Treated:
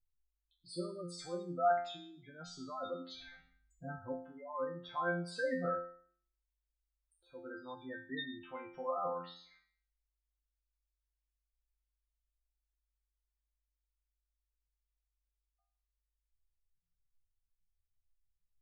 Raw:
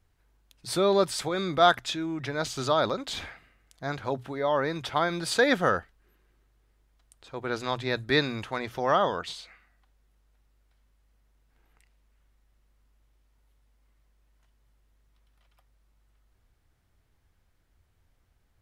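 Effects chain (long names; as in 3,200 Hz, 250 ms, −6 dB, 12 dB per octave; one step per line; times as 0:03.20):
gate on every frequency bin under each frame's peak −10 dB strong
0:03.27–0:04.13: bass and treble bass +14 dB, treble +15 dB
resonators tuned to a chord F3 fifth, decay 0.52 s
level +5 dB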